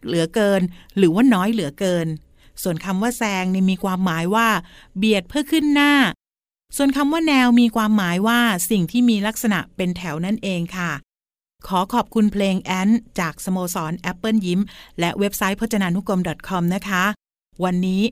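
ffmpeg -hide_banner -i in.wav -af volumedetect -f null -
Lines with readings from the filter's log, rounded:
mean_volume: -19.7 dB
max_volume: -3.0 dB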